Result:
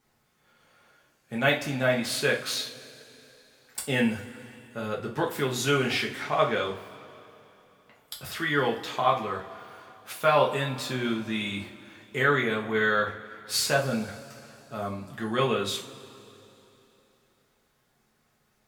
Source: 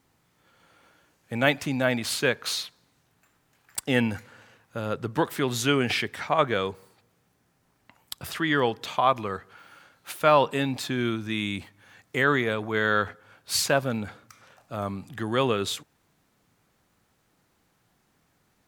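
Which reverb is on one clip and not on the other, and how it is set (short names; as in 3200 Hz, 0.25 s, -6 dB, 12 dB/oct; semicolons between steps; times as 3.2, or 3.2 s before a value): two-slope reverb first 0.32 s, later 3.3 s, from -22 dB, DRR -3 dB; gain -5.5 dB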